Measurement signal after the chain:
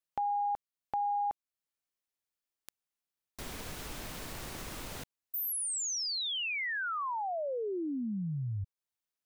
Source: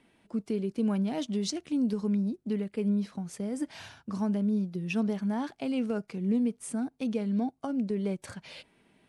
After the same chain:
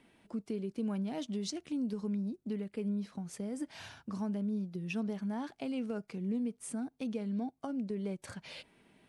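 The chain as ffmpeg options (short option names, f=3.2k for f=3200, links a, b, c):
-af "acompressor=threshold=-45dB:ratio=1.5"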